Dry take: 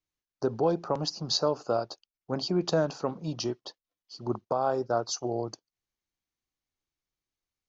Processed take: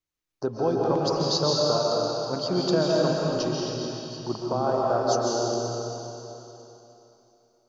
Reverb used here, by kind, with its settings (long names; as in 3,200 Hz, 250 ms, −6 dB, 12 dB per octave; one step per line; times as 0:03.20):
comb and all-pass reverb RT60 3.2 s, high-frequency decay 1×, pre-delay 100 ms, DRR −4 dB